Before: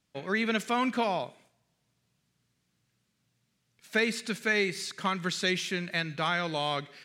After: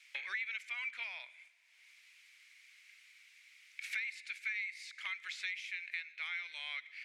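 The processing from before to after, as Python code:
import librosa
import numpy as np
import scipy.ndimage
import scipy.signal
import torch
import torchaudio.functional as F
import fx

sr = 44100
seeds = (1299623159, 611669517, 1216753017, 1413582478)

y = fx.bandpass_q(x, sr, hz=2200.0, q=7.7)
y = np.diff(y, prepend=0.0)
y = fx.band_squash(y, sr, depth_pct=100)
y = F.gain(torch.from_numpy(y), 9.5).numpy()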